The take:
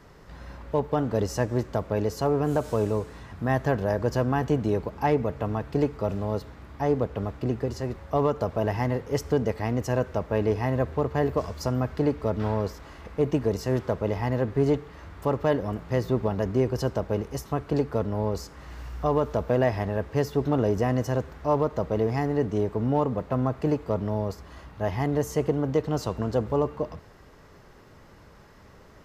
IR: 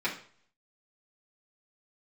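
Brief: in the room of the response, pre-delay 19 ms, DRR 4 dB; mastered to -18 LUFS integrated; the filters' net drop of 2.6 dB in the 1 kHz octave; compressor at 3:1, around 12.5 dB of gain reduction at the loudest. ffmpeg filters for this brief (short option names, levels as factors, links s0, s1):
-filter_complex "[0:a]equalizer=f=1000:t=o:g=-3.5,acompressor=threshold=0.0141:ratio=3,asplit=2[s0][s1];[1:a]atrim=start_sample=2205,adelay=19[s2];[s1][s2]afir=irnorm=-1:irlink=0,volume=0.224[s3];[s0][s3]amix=inputs=2:normalize=0,volume=10"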